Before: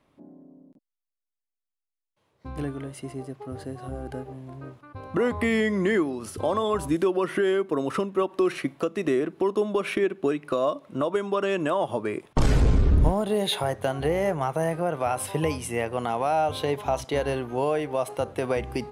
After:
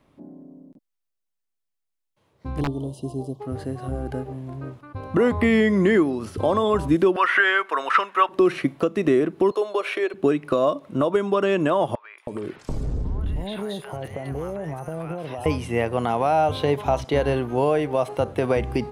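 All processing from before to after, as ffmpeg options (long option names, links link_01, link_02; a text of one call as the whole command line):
ffmpeg -i in.wav -filter_complex "[0:a]asettb=1/sr,asplit=3[link_01][link_02][link_03];[link_01]atrim=end=2.614[link_04];[link_02]atrim=start=2.61:end=3.4,asetpts=PTS-STARTPTS,afade=type=in:duration=0.004:curve=qsin,afade=type=out:start_time=0.786:duration=0.004:curve=qsin,asuperstop=centerf=1800:order=12:qfactor=0.89,aeval=exprs='(mod(13.3*val(0)+1,2)-1)/13.3':channel_layout=same[link_05];[link_03]atrim=start=3.396[link_06];[link_04][link_05]acrossfade=duration=0.004:curve1=hsin:curve2=qsin[link_07];[link_07][link_06]acrossfade=duration=0.004:curve1=qsin:curve2=hsin,asettb=1/sr,asplit=3[link_08][link_09][link_10];[link_08]atrim=end=7.164[link_11];[link_09]atrim=start=7.16:end=8.29,asetpts=PTS-STARTPTS,afade=type=in:duration=0.004:curve=qsin,afade=type=out:start_time=1.126:duration=0.004:curve=qsin,highpass=900,acrossover=split=7800[link_12][link_13];[link_13]acompressor=threshold=-60dB:ratio=4:attack=1:release=60[link_14];[link_12][link_14]amix=inputs=2:normalize=0,equalizer=frequency=1600:width_type=o:width=2.1:gain=14[link_15];[link_10]atrim=start=8.286[link_16];[link_11][link_15]acrossfade=duration=0.004:curve1=hsin:curve2=qsin[link_17];[link_17][link_16]acrossfade=duration=0.004:curve1=qsin:curve2=hsin,asettb=1/sr,asplit=3[link_18][link_19][link_20];[link_18]atrim=end=9.514[link_21];[link_19]atrim=start=9.51:end=10.14,asetpts=PTS-STARTPTS,afade=type=in:duration=0.004:curve=qsin,afade=type=out:start_time=0.626:duration=0.004:curve=qsin,highpass=frequency=440:width=0.5412,highpass=frequency=440:width=1.3066,aeval=exprs='val(0)+0.00112*sin(2*PI*4200*n/s)':channel_layout=same[link_22];[link_20]atrim=start=10.136[link_23];[link_21][link_22]acrossfade=duration=0.004:curve1=hsin:curve2=qsin[link_24];[link_24][link_23]acrossfade=duration=0.004:curve1=qsin:curve2=hsin,asettb=1/sr,asplit=3[link_25][link_26][link_27];[link_25]atrim=end=11.954[link_28];[link_26]atrim=start=11.95:end=15.46,asetpts=PTS-STARTPTS,afade=type=in:duration=0.004:curve=qsin,afade=type=out:start_time=3.506:duration=0.004:curve=qsin,acompressor=threshold=-31dB:ratio=6:attack=3.2:release=140:knee=1:detection=peak,acrossover=split=1000|3600[link_29][link_30][link_31];[link_31]adelay=230[link_32];[link_29]adelay=320[link_33];[link_33][link_30][link_32]amix=inputs=3:normalize=0,atrim=end_sample=154791[link_34];[link_27]atrim=start=15.456[link_35];[link_28][link_34]acrossfade=duration=0.004:curve1=hsin:curve2=qsin[link_36];[link_36][link_35]acrossfade=duration=0.004:curve1=qsin:curve2=hsin,acrossover=split=4800[link_37][link_38];[link_38]acompressor=threshold=-51dB:ratio=4:attack=1:release=60[link_39];[link_37][link_39]amix=inputs=2:normalize=0,lowshelf=frequency=350:gain=4.5,volume=3dB" out.wav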